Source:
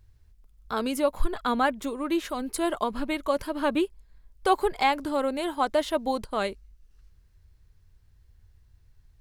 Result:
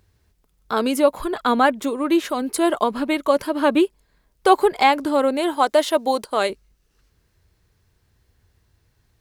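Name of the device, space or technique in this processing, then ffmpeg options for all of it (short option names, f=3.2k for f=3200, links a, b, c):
filter by subtraction: -filter_complex "[0:a]asettb=1/sr,asplit=3[a][b][c];[a]atrim=end=5.564[d];[b]atrim=start=5.56:end=6.5,asetpts=PTS-STARTPTS,afade=t=in:d=0.004:c=qsin,afade=t=out:st=0.936:d=0.004:c=qsin,bass=f=250:g=-9,treble=f=4k:g=4[e];[c]atrim=start=6.496[f];[d][e]acrossfade=d=0.004:c1=hsin:c2=qsin[g];[g][f]acrossfade=d=0.004:c1=qsin:c2=hsin,asplit=2[h][i];[i]lowpass=320,volume=-1[j];[h][j]amix=inputs=2:normalize=0,volume=6.5dB"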